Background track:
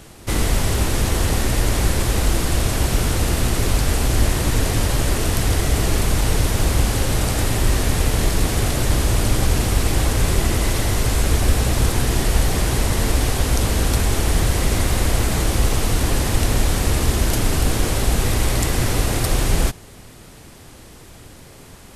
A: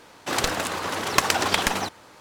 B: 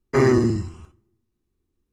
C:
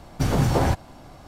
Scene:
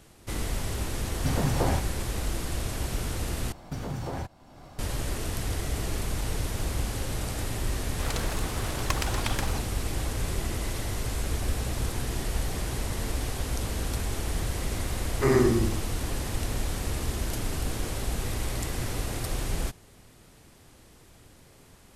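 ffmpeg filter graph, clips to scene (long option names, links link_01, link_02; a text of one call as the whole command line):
ffmpeg -i bed.wav -i cue0.wav -i cue1.wav -i cue2.wav -filter_complex "[3:a]asplit=2[link_01][link_02];[0:a]volume=-12dB[link_03];[link_02]acompressor=threshold=-25dB:ratio=5:attack=0.31:release=902:knee=1:detection=peak[link_04];[2:a]aecho=1:1:108:0.473[link_05];[link_03]asplit=2[link_06][link_07];[link_06]atrim=end=3.524[link_08];[link_04]atrim=end=1.27,asetpts=PTS-STARTPTS,volume=-2.5dB[link_09];[link_07]atrim=start=4.786[link_10];[link_01]atrim=end=1.27,asetpts=PTS-STARTPTS,volume=-6dB,afade=type=in:duration=0.004:curve=hsin,afade=type=out:start_time=1.266:duration=0.004:curve=hsin,adelay=1050[link_11];[1:a]atrim=end=2.2,asetpts=PTS-STARTPTS,volume=-11dB,afade=type=in:duration=0.004:curve=hsin,afade=type=out:start_time=2.196:duration=0.004:curve=hsin,adelay=7720[link_12];[link_05]atrim=end=1.92,asetpts=PTS-STARTPTS,volume=-5.5dB,afade=type=in:duration=0.004:curve=hsin,afade=type=out:start_time=1.916:duration=0.004:curve=hsin,adelay=665028S[link_13];[link_08][link_09]acrossfade=duration=0.004:curve1=hsin:curve2=hsin[link_14];[link_14][link_10]acrossfade=duration=0.004:curve1=hsin:curve2=hsin[link_15];[link_15][link_11][link_12][link_13]amix=inputs=4:normalize=0" out.wav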